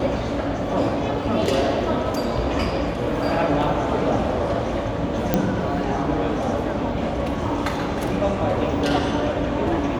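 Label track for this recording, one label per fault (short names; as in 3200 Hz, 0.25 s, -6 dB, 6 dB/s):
5.340000	5.340000	pop -5 dBFS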